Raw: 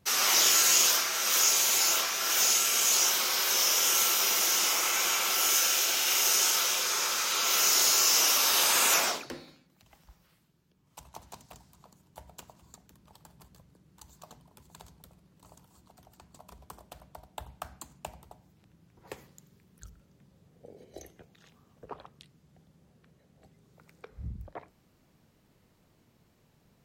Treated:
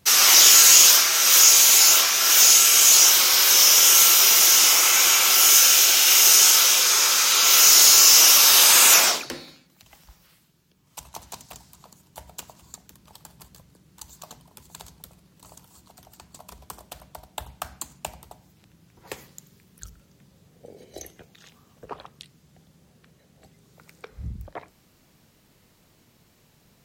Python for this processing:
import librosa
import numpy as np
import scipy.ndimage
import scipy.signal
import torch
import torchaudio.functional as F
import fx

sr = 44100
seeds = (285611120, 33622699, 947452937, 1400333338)

p1 = fx.high_shelf(x, sr, hz=2000.0, db=7.5)
p2 = np.clip(p1, -10.0 ** (-15.0 / 20.0), 10.0 ** (-15.0 / 20.0))
p3 = p1 + F.gain(torch.from_numpy(p2), -9.0).numpy()
y = F.gain(torch.from_numpy(p3), 2.0).numpy()